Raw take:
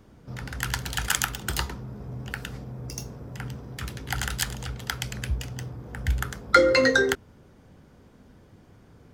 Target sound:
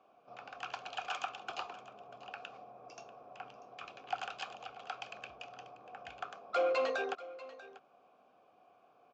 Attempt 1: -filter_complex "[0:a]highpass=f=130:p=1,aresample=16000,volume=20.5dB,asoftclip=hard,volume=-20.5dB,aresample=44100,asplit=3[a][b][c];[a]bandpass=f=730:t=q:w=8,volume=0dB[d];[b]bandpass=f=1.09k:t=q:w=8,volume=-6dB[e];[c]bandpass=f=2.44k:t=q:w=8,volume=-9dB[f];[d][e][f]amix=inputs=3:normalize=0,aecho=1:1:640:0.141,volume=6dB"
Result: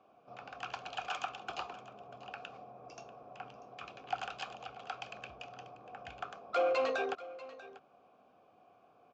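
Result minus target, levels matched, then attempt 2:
125 Hz band +6.0 dB
-filter_complex "[0:a]highpass=f=380:p=1,aresample=16000,volume=20.5dB,asoftclip=hard,volume=-20.5dB,aresample=44100,asplit=3[a][b][c];[a]bandpass=f=730:t=q:w=8,volume=0dB[d];[b]bandpass=f=1.09k:t=q:w=8,volume=-6dB[e];[c]bandpass=f=2.44k:t=q:w=8,volume=-9dB[f];[d][e][f]amix=inputs=3:normalize=0,aecho=1:1:640:0.141,volume=6dB"

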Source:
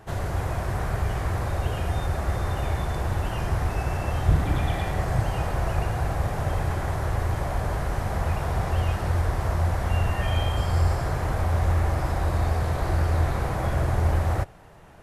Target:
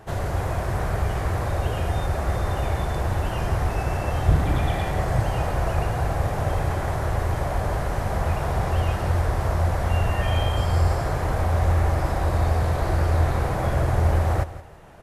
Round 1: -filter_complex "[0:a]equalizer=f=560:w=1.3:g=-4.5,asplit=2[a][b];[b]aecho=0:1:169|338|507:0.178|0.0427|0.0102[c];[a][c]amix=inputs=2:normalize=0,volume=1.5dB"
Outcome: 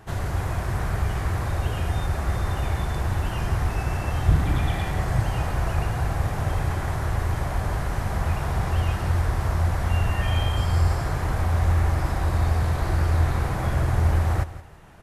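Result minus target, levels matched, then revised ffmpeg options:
500 Hz band -5.0 dB
-filter_complex "[0:a]equalizer=f=560:w=1.3:g=2.5,asplit=2[a][b];[b]aecho=0:1:169|338|507:0.178|0.0427|0.0102[c];[a][c]amix=inputs=2:normalize=0,volume=1.5dB"

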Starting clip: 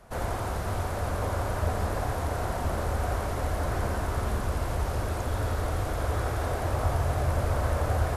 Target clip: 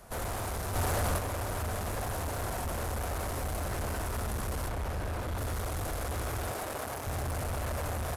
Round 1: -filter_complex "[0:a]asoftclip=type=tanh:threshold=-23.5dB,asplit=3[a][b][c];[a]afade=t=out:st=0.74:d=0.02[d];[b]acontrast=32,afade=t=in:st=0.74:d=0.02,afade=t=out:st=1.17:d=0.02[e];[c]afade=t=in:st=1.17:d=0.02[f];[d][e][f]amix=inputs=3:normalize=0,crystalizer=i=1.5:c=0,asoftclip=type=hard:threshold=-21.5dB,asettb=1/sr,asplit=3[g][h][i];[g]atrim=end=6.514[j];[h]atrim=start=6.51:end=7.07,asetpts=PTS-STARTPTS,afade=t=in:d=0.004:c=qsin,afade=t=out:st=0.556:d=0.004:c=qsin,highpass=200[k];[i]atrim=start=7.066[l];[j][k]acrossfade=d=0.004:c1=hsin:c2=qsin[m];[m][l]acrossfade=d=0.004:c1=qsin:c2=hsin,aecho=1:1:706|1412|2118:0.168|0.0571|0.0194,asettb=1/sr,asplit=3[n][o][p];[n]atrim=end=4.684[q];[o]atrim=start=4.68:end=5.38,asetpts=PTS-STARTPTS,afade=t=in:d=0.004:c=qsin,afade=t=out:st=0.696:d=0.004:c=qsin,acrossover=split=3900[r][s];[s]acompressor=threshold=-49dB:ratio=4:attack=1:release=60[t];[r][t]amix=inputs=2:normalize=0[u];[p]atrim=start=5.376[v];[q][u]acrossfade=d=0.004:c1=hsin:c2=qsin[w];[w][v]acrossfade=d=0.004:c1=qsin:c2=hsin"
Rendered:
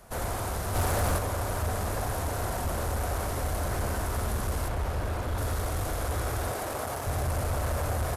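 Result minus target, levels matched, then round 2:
soft clip: distortion -7 dB
-filter_complex "[0:a]asoftclip=type=tanh:threshold=-31.5dB,asplit=3[a][b][c];[a]afade=t=out:st=0.74:d=0.02[d];[b]acontrast=32,afade=t=in:st=0.74:d=0.02,afade=t=out:st=1.17:d=0.02[e];[c]afade=t=in:st=1.17:d=0.02[f];[d][e][f]amix=inputs=3:normalize=0,crystalizer=i=1.5:c=0,asoftclip=type=hard:threshold=-21.5dB,asettb=1/sr,asplit=3[g][h][i];[g]atrim=end=6.514[j];[h]atrim=start=6.51:end=7.07,asetpts=PTS-STARTPTS,afade=t=in:d=0.004:c=qsin,afade=t=out:st=0.556:d=0.004:c=qsin,highpass=200[k];[i]atrim=start=7.066[l];[j][k]acrossfade=d=0.004:c1=hsin:c2=qsin[m];[m][l]acrossfade=d=0.004:c1=qsin:c2=hsin,aecho=1:1:706|1412|2118:0.168|0.0571|0.0194,asettb=1/sr,asplit=3[n][o][p];[n]atrim=end=4.684[q];[o]atrim=start=4.68:end=5.38,asetpts=PTS-STARTPTS,afade=t=in:d=0.004:c=qsin,afade=t=out:st=0.696:d=0.004:c=qsin,acrossover=split=3900[r][s];[s]acompressor=threshold=-49dB:ratio=4:attack=1:release=60[t];[r][t]amix=inputs=2:normalize=0[u];[p]atrim=start=5.376[v];[q][u]acrossfade=d=0.004:c1=hsin:c2=qsin[w];[w][v]acrossfade=d=0.004:c1=qsin:c2=hsin"

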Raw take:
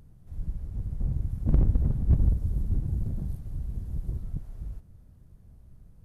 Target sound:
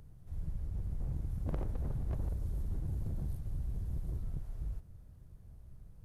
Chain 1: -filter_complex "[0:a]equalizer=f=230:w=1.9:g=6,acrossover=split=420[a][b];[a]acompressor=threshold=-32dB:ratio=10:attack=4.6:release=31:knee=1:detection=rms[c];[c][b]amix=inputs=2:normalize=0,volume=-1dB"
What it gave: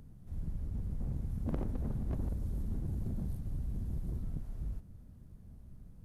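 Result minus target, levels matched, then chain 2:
250 Hz band +4.5 dB
-filter_complex "[0:a]equalizer=f=230:w=1.9:g=-5,acrossover=split=420[a][b];[a]acompressor=threshold=-32dB:ratio=10:attack=4.6:release=31:knee=1:detection=rms[c];[c][b]amix=inputs=2:normalize=0,volume=-1dB"

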